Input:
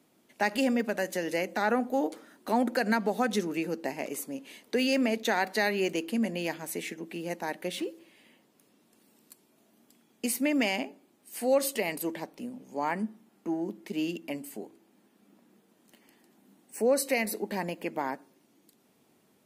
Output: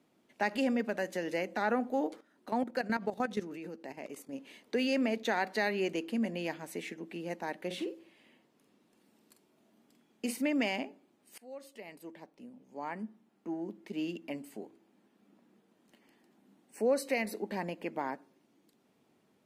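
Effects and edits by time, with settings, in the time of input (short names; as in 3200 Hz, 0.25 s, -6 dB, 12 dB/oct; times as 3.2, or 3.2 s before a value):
2.16–4.33 level quantiser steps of 13 dB
7.66–10.42 doubler 46 ms -7.5 dB
11.38–14.38 fade in linear, from -22.5 dB
whole clip: high shelf 7100 Hz -12 dB; gain -3.5 dB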